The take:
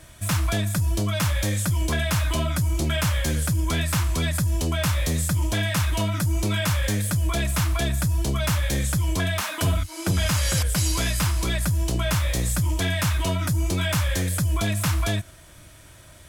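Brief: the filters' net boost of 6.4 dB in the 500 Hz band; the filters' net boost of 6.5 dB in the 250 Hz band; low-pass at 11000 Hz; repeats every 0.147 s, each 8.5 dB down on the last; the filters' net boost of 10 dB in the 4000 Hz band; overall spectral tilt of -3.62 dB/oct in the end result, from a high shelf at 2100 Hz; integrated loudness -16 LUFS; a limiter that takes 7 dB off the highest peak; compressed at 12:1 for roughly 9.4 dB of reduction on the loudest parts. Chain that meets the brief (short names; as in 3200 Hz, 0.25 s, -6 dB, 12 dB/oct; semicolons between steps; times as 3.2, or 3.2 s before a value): LPF 11000 Hz; bell 250 Hz +8 dB; bell 500 Hz +6 dB; high shelf 2100 Hz +8 dB; bell 4000 Hz +5 dB; compressor 12:1, threshold -24 dBFS; limiter -20.5 dBFS; feedback echo 0.147 s, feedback 38%, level -8.5 dB; gain +12.5 dB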